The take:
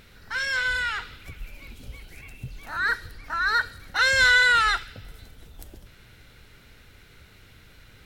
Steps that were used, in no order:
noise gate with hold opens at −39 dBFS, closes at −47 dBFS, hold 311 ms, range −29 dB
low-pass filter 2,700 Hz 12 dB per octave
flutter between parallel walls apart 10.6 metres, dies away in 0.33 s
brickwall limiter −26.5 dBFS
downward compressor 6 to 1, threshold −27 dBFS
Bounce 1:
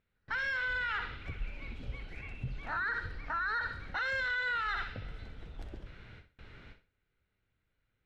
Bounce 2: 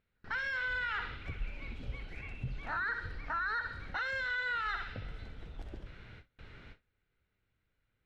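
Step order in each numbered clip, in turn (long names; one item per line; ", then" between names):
low-pass filter, then noise gate with hold, then flutter between parallel walls, then brickwall limiter, then downward compressor
flutter between parallel walls, then downward compressor, then brickwall limiter, then low-pass filter, then noise gate with hold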